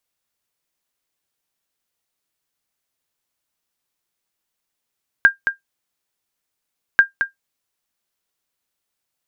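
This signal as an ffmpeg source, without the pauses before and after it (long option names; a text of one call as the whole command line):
ffmpeg -f lavfi -i "aevalsrc='0.841*(sin(2*PI*1600*mod(t,1.74))*exp(-6.91*mod(t,1.74)/0.13)+0.376*sin(2*PI*1600*max(mod(t,1.74)-0.22,0))*exp(-6.91*max(mod(t,1.74)-0.22,0)/0.13))':duration=3.48:sample_rate=44100" out.wav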